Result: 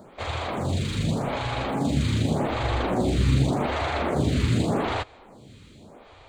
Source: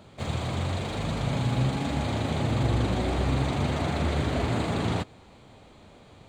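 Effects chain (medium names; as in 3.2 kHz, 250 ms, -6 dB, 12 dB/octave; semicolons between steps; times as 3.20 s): lamp-driven phase shifter 0.85 Hz; trim +6.5 dB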